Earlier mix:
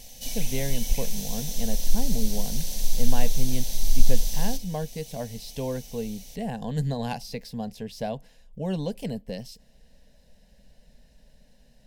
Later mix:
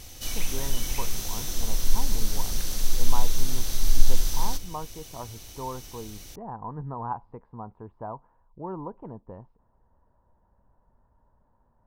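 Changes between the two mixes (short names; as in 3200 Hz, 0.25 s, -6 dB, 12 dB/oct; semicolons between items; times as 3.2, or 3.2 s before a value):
speech: add ladder low-pass 1000 Hz, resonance 80%; master: remove fixed phaser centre 340 Hz, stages 6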